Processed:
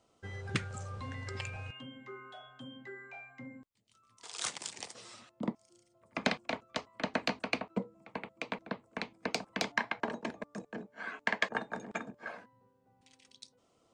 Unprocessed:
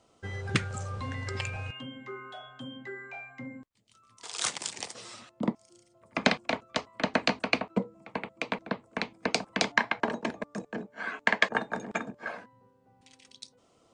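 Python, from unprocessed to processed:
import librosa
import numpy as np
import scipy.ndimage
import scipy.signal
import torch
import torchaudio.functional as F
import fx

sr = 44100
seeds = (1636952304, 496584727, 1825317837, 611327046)

y = 10.0 ** (-7.0 / 20.0) * np.tanh(x / 10.0 ** (-7.0 / 20.0))
y = y * librosa.db_to_amplitude(-6.0)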